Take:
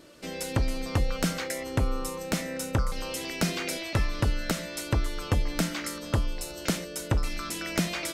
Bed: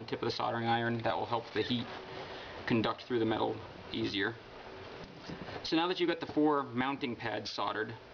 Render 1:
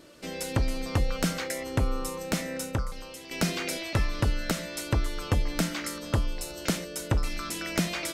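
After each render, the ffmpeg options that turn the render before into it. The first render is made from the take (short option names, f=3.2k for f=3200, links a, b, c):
-filter_complex "[0:a]asplit=2[a][b];[a]atrim=end=3.31,asetpts=PTS-STARTPTS,afade=t=out:st=2.58:d=0.73:c=qua:silence=0.316228[c];[b]atrim=start=3.31,asetpts=PTS-STARTPTS,afade=t=in:d=0.004:c=hsin:silence=0.316228[d];[c][d]concat=n=2:v=0:a=1"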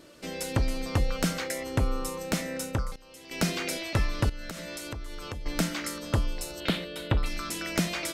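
-filter_complex "[0:a]asettb=1/sr,asplit=3[a][b][c];[a]atrim=end=4.294[d];[b]atrim=start=4.29:end=5.46,asetpts=PTS-STARTPTS,afade=t=in:d=0.004:c=qsin,afade=t=out:st=1.166:d=0.004:c=qsin,acompressor=threshold=-34dB:ratio=6:attack=3.2:release=140:knee=1:detection=peak[e];[c]atrim=start=5.456[f];[d][e]acrossfade=d=0.004:c1=hsin:c2=qsin[g];[g][f]acrossfade=d=0.004:c1=qsin:c2=hsin,asettb=1/sr,asplit=3[h][i][j];[h]atrim=end=6.604[k];[i]atrim=start=6.6:end=7.26,asetpts=PTS-STARTPTS,afade=t=in:d=0.004:c=qsin,afade=t=out:st=0.656:d=0.004:c=qsin,highshelf=f=4.7k:t=q:w=3:g=-9[l];[j]atrim=start=7.256[m];[k][l]acrossfade=d=0.004:c1=hsin:c2=qsin[n];[n][m]acrossfade=d=0.004:c1=qsin:c2=hsin,asplit=2[o][p];[o]atrim=end=2.96,asetpts=PTS-STARTPTS,afade=t=out:st=2.956:d=0.004:c=hsin:silence=0.125893[q];[p]atrim=start=2.96,asetpts=PTS-STARTPTS,afade=t=in:d=0.46:silence=0.125893[r];[q][r]concat=n=2:v=0:a=1"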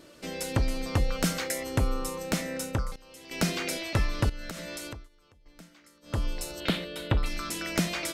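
-filter_complex "[0:a]asettb=1/sr,asplit=3[a][b][c];[a]atrim=end=1.244[d];[b]atrim=start=1.24:end=1.94,asetpts=PTS-STARTPTS,afade=t=in:d=0.004:c=qsin,afade=t=out:st=0.696:d=0.004:c=qsin,highshelf=f=6.1k:g=5[e];[c]atrim=start=1.936[f];[d][e]acrossfade=d=0.004:c1=hsin:c2=qsin[g];[g][f]acrossfade=d=0.004:c1=qsin:c2=hsin,asplit=3[h][i][j];[h]atrim=end=5.09,asetpts=PTS-STARTPTS,afade=t=out:st=4.85:d=0.24:silence=0.0668344[k];[i]atrim=start=5.09:end=6.02,asetpts=PTS-STARTPTS,volume=-23.5dB[l];[j]atrim=start=6.02,asetpts=PTS-STARTPTS,afade=t=in:d=0.24:silence=0.0668344[m];[k][l][m]concat=n=3:v=0:a=1"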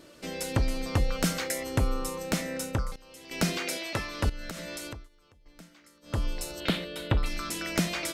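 -filter_complex "[0:a]asettb=1/sr,asplit=3[a][b][c];[a]atrim=end=3.584[d];[b]atrim=start=3.58:end=4.24,asetpts=PTS-STARTPTS,afade=t=in:d=0.004:c=qsin,afade=t=out:st=0.656:d=0.004:c=qsin,highpass=f=280:p=1[e];[c]atrim=start=4.236[f];[d][e]acrossfade=d=0.004:c1=hsin:c2=qsin[g];[g][f]acrossfade=d=0.004:c1=qsin:c2=hsin"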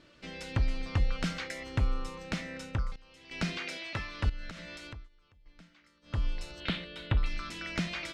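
-af "lowpass=3.4k,equalizer=f=470:w=0.45:g=-10"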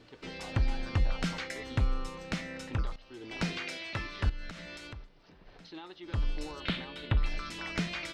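-filter_complex "[1:a]volume=-15.5dB[a];[0:a][a]amix=inputs=2:normalize=0"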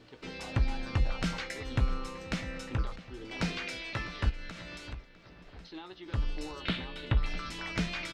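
-filter_complex "[0:a]asplit=2[a][b];[b]adelay=16,volume=-11.5dB[c];[a][c]amix=inputs=2:normalize=0,asplit=2[d][e];[e]adelay=653,lowpass=f=3.8k:p=1,volume=-15.5dB,asplit=2[f][g];[g]adelay=653,lowpass=f=3.8k:p=1,volume=0.48,asplit=2[h][i];[i]adelay=653,lowpass=f=3.8k:p=1,volume=0.48,asplit=2[j][k];[k]adelay=653,lowpass=f=3.8k:p=1,volume=0.48[l];[d][f][h][j][l]amix=inputs=5:normalize=0"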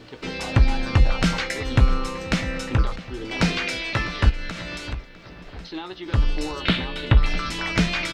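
-af "volume=11.5dB"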